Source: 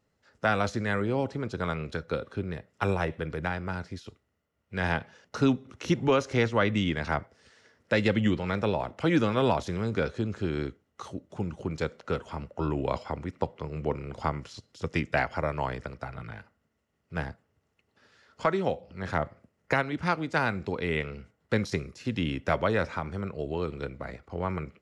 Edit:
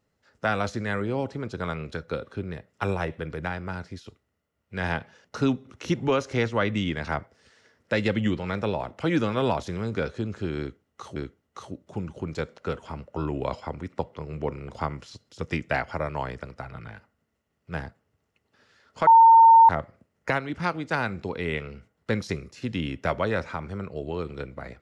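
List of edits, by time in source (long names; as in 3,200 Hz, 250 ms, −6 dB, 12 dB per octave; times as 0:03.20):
0:10.59–0:11.16: repeat, 2 plays
0:18.50–0:19.12: beep over 909 Hz −9.5 dBFS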